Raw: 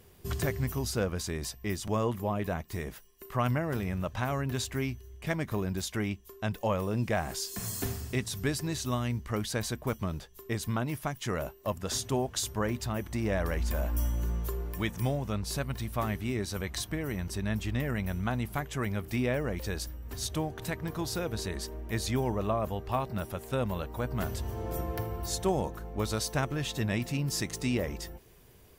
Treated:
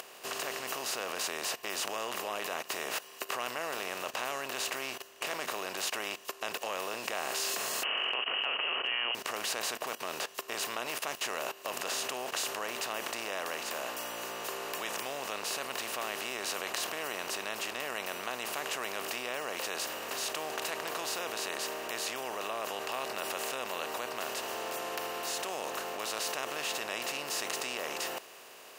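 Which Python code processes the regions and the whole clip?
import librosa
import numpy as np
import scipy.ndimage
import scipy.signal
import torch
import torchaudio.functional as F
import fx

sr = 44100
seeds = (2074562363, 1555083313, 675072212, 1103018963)

y = fx.chain(x, sr, fx.freq_invert(carrier_hz=3000),
    fx.dynamic_eq(hz=180.0, q=1.1, threshold_db=-60.0, ratio=4.0, max_db=-4), at=(7.83, 9.15))
y = fx.bin_compress(y, sr, power=0.4)
y = fx.level_steps(y, sr, step_db=16)
y = scipy.signal.sosfilt(scipy.signal.butter(2, 570.0, 'highpass', fs=sr, output='sos'), y)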